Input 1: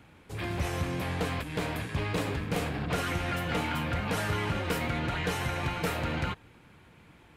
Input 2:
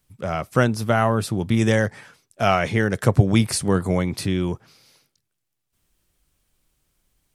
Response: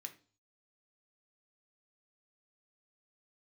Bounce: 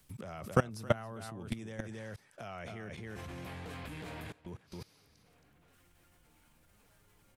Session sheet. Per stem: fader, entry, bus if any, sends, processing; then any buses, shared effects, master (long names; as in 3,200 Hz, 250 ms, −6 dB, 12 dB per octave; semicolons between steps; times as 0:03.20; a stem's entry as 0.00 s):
0:04.16 −1.5 dB → 0:04.45 −11 dB, 2.45 s, no send, echo send −15.5 dB, brickwall limiter −31 dBFS, peak gain reduction 10.5 dB; automatic gain control gain up to 11 dB; automatic ducking −22 dB, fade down 0.25 s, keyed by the second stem
−6.0 dB, 0.00 s, muted 0:02.90–0:04.46, no send, echo send −8.5 dB, multiband upward and downward compressor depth 70%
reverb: not used
echo: single-tap delay 271 ms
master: output level in coarse steps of 22 dB